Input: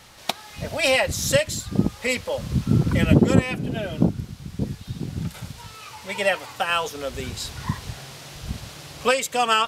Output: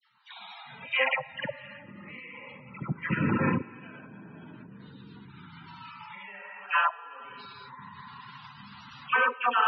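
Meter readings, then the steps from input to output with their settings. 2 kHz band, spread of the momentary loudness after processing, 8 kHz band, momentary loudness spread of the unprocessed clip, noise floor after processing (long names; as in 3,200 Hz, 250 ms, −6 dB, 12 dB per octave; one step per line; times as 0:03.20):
−3.0 dB, 21 LU, below −40 dB, 17 LU, −49 dBFS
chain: high-frequency loss of the air 60 metres
rotating-speaker cabinet horn 7 Hz
low shelf with overshoot 770 Hz −8 dB, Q 3
dense smooth reverb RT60 2.5 s, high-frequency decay 0.85×, DRR −5.5 dB
treble cut that deepens with the level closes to 2,900 Hz, closed at −24 dBFS
output level in coarse steps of 22 dB
high-pass filter 170 Hz 12 dB per octave
spectral peaks only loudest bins 64
treble cut that deepens with the level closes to 2,600 Hz, closed at −32 dBFS
all-pass dispersion lows, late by 96 ms, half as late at 1,300 Hz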